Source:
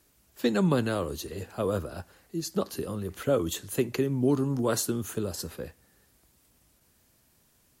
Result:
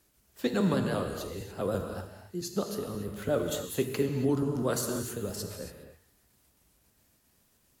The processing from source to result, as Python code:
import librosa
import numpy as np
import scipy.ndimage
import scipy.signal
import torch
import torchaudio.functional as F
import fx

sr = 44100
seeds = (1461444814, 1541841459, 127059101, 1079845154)

y = fx.pitch_trill(x, sr, semitones=1.0, every_ms=67)
y = fx.rev_gated(y, sr, seeds[0], gate_ms=310, shape='flat', drr_db=4.5)
y = y * librosa.db_to_amplitude(-3.0)